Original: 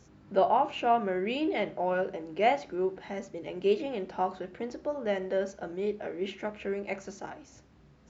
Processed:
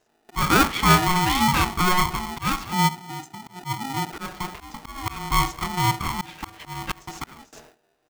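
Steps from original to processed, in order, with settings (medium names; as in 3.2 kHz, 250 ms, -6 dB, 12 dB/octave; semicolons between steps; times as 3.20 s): 2.88–3.46 s: high-pass 240 Hz -> 700 Hz 6 dB/octave; delay 241 ms -23 dB; 2.73–4.13 s: spectral selection erased 450–6400 Hz; slow attack 306 ms; gate with hold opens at -46 dBFS; in parallel at -8 dB: hard clipper -26 dBFS, distortion -11 dB; on the sum: polarity switched at an audio rate 540 Hz; trim +7 dB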